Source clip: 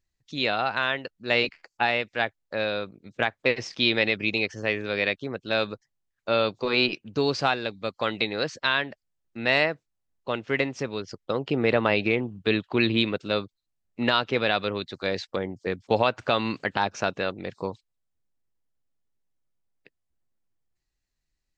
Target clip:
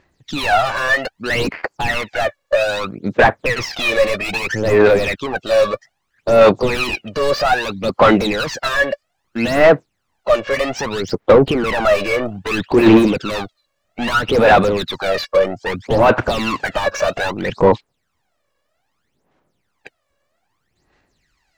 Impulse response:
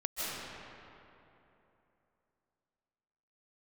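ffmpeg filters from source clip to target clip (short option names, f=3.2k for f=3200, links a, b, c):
-filter_complex "[0:a]asplit=2[a][b];[b]highpass=f=720:p=1,volume=37dB,asoftclip=type=tanh:threshold=-5.5dB[c];[a][c]amix=inputs=2:normalize=0,lowpass=f=1.2k:p=1,volume=-6dB,aphaser=in_gain=1:out_gain=1:delay=1.8:decay=0.76:speed=0.62:type=sinusoidal,volume=-4.5dB"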